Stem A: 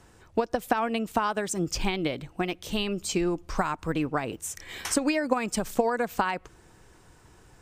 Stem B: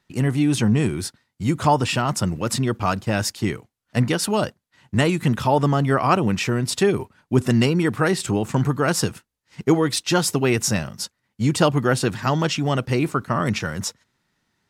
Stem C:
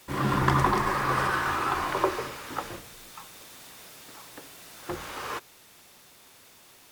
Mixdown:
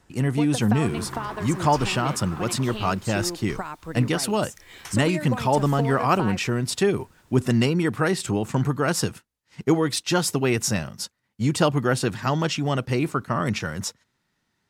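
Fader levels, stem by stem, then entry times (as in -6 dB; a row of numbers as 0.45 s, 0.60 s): -5.5 dB, -2.5 dB, -13.0 dB; 0.00 s, 0.00 s, 0.65 s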